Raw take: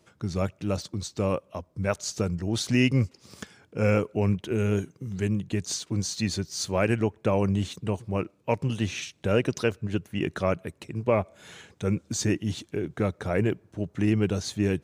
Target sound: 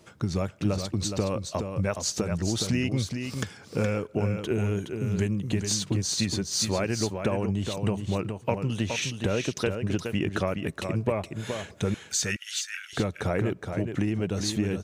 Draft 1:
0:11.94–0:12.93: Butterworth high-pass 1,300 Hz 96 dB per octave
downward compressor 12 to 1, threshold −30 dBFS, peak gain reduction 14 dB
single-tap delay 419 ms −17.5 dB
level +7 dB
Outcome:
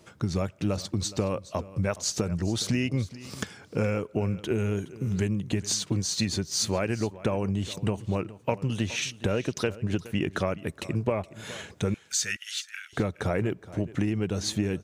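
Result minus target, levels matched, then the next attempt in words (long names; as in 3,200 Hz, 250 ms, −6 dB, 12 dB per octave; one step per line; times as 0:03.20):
echo-to-direct −11 dB
0:11.94–0:12.93: Butterworth high-pass 1,300 Hz 96 dB per octave
downward compressor 12 to 1, threshold −30 dBFS, peak gain reduction 14 dB
single-tap delay 419 ms −6.5 dB
level +7 dB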